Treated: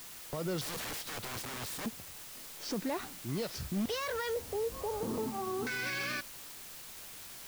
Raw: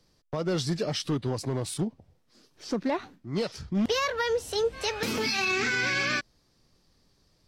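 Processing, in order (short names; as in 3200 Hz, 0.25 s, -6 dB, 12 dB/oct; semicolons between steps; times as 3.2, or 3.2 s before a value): 4.36–5.67 elliptic low-pass 1100 Hz, stop band 50 dB; limiter -28.5 dBFS, peak gain reduction 10.5 dB; 0.61–1.86 wrapped overs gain 35.5 dB; requantised 8-bit, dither triangular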